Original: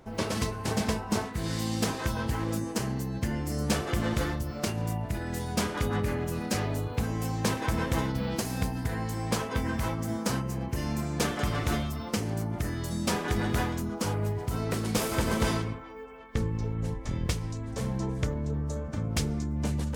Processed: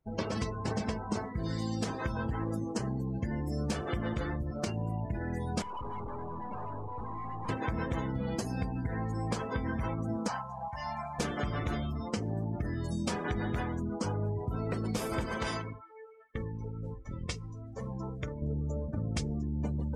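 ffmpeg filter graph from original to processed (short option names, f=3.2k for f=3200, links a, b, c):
-filter_complex "[0:a]asettb=1/sr,asplit=3[a][b][c];[a]atrim=end=5.624[d];[b]atrim=start=5.62:end=7.49,asetpts=PTS-STARTPTS,afade=t=in:d=0.004:c=qsin,afade=t=out:st=1.866:d=0.004:c=qsin,lowpass=f=1k:t=q:w=9.1,aeval=exprs='(tanh(70.8*val(0)+0.7)-tanh(0.7))/70.8':c=same[e];[c]atrim=start=7.486[f];[d][e]acrossfade=d=0.004:c1=hsin:c2=qsin[g];[g][f]acrossfade=d=0.004:c1=qsin:c2=hsin,asettb=1/sr,asplit=3[h][i][j];[h]atrim=end=10.284[k];[i]atrim=start=10.28:end=11.19,asetpts=PTS-STARTPTS,afade=t=in:d=0.004:c=qsin,afade=t=out:st=0.906:d=0.004:c=qsin,lowpass=8k,lowshelf=f=550:t=q:w=3:g=-12.5,acrusher=bits=7:mix=0:aa=0.5[l];[j]atrim=start=11.186[m];[k][l]acrossfade=d=0.004:c1=hsin:c2=qsin[n];[n][m]acrossfade=d=0.004:c1=qsin:c2=hsin,asettb=1/sr,asplit=3[o][p][q];[o]atrim=end=15.264[r];[p]atrim=start=15.26:end=18.42,asetpts=PTS-STARTPTS,afade=t=in:d=0.004:c=qsin,afade=t=out:st=3.156:d=0.004:c=qsin,lowshelf=f=440:g=-9.5,asplit=2[s][t];[t]adelay=47,volume=-12dB[u];[s][u]amix=inputs=2:normalize=0,atrim=end_sample=139356[v];[q]atrim=start=18.416[w];[r][v]acrossfade=d=0.004:c1=hsin:c2=qsin[x];[x][w]acrossfade=d=0.004:c1=qsin:c2=hsin,afftdn=nr=30:nf=-38,acompressor=threshold=-29dB:ratio=6"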